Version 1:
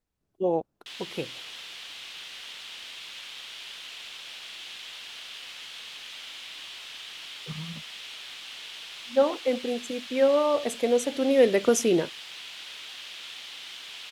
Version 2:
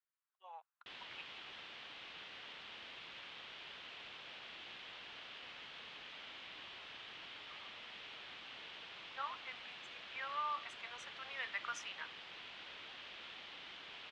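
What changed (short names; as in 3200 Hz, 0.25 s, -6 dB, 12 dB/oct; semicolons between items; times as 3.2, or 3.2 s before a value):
speech: add steep high-pass 1100 Hz 36 dB/oct; master: add tape spacing loss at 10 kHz 36 dB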